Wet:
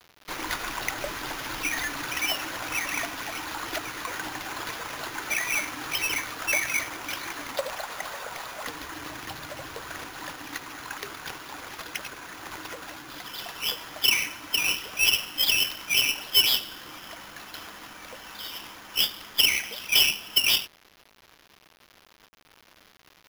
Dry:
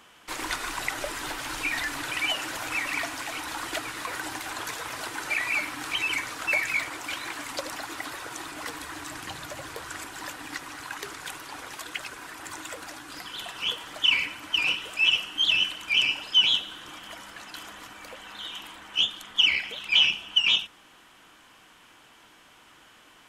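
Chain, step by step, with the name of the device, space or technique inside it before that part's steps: 7.55–8.65 s: resonant low shelf 400 Hz -9.5 dB, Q 3; early 8-bit sampler (sample-rate reducer 8.3 kHz, jitter 0%; bit crusher 8-bit)

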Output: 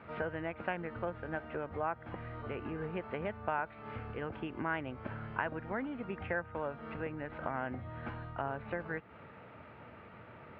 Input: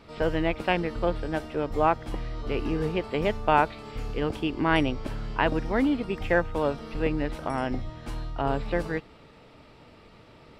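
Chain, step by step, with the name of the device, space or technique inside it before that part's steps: bass amplifier (compression 4:1, threshold -35 dBFS, peak gain reduction 16.5 dB; cabinet simulation 76–2400 Hz, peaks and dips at 150 Hz -3 dB, 290 Hz -6 dB, 420 Hz -4 dB, 1.5 kHz +6 dB); trim +1 dB

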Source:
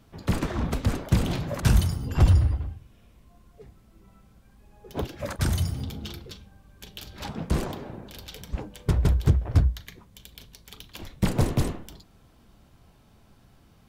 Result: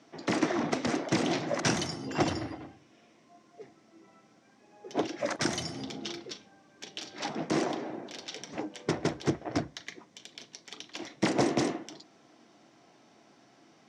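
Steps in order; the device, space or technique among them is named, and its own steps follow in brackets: television speaker (cabinet simulation 180–7400 Hz, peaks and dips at 190 Hz -7 dB, 320 Hz +7 dB, 700 Hz +6 dB, 2 kHz +6 dB, 5.7 kHz +8 dB)

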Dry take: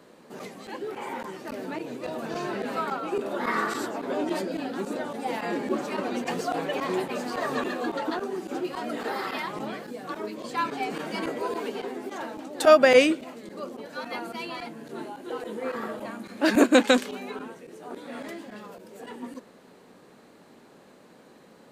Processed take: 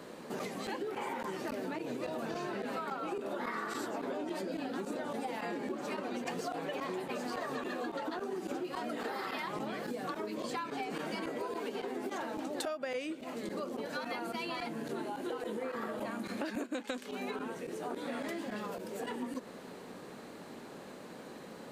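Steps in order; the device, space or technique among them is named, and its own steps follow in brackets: serial compression, peaks first (compression 5:1, threshold -35 dBFS, peak gain reduction 21.5 dB; compression 3:1, threshold -41 dBFS, peak gain reduction 9 dB); trim +5 dB

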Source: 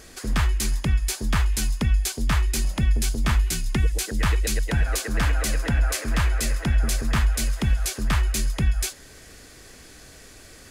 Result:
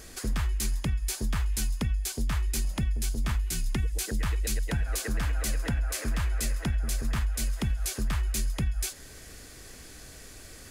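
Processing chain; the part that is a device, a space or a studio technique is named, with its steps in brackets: ASMR close-microphone chain (bass shelf 130 Hz +4.5 dB; compression 5:1, threshold -23 dBFS, peak gain reduction 10.5 dB; treble shelf 8.6 kHz +6 dB); trim -2.5 dB

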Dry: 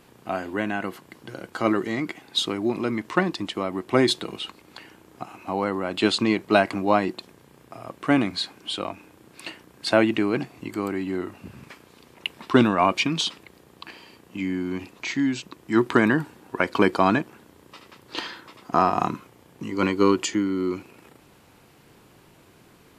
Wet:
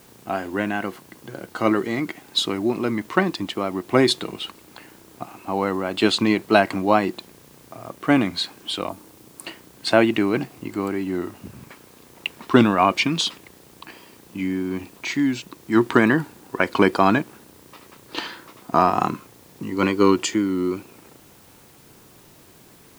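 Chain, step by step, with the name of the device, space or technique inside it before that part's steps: 8.89–9.46 s: FFT filter 1.2 kHz 0 dB, 2.7 kHz -18 dB, 10 kHz +13 dB; plain cassette with noise reduction switched in (tape noise reduction on one side only decoder only; wow and flutter; white noise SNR 30 dB); trim +2.5 dB

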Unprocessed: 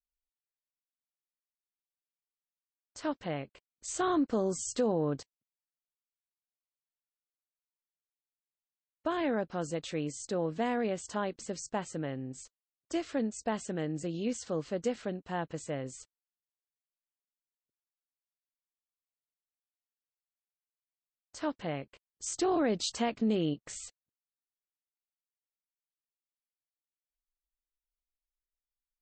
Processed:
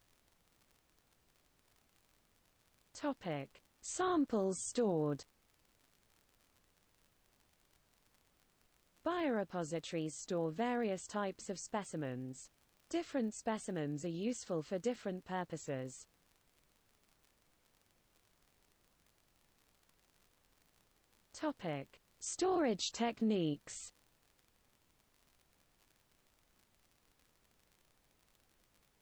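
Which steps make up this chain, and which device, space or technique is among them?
warped LP (warped record 33 1/3 rpm, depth 100 cents; crackle 57 per s -48 dBFS; pink noise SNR 32 dB); trim -5 dB

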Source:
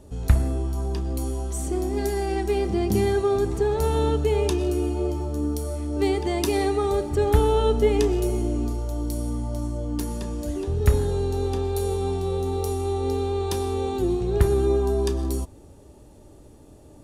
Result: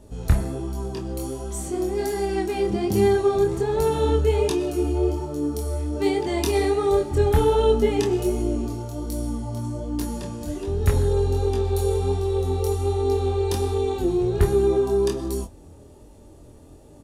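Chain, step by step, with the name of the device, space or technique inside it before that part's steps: double-tracked vocal (doubling 25 ms -11.5 dB; chorus 1.3 Hz, delay 20 ms, depth 5.1 ms); trim +3.5 dB

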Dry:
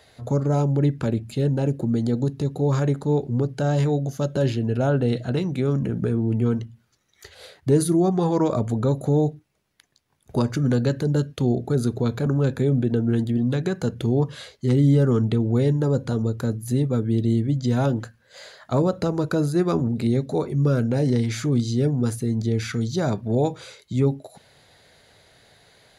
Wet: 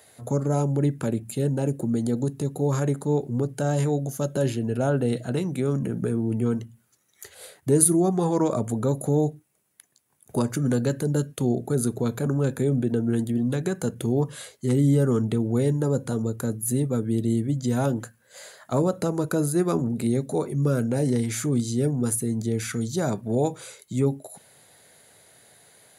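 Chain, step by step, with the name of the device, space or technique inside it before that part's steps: budget condenser microphone (high-pass 120 Hz; resonant high shelf 6.6 kHz +11 dB, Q 1.5); trim -1.5 dB

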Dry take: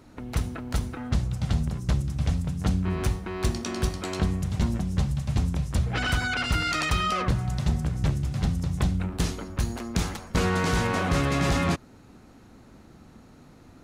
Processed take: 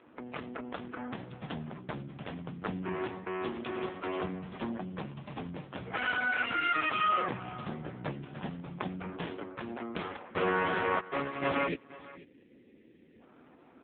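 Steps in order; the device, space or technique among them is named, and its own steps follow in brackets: 10.99–11.42 s: gate -22 dBFS, range -37 dB; 11.67–13.21 s: spectral selection erased 570–1700 Hz; satellite phone (band-pass 320–3300 Hz; delay 486 ms -19 dB; trim +1 dB; AMR-NB 5.9 kbps 8 kHz)

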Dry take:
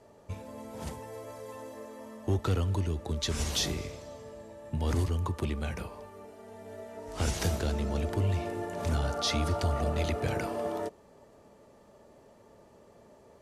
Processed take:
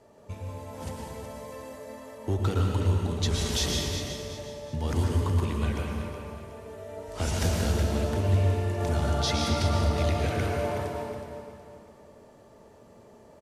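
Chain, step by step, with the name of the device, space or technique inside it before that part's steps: feedback delay 369 ms, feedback 36%, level -10 dB; stairwell (reverberation RT60 1.6 s, pre-delay 106 ms, DRR 0 dB)

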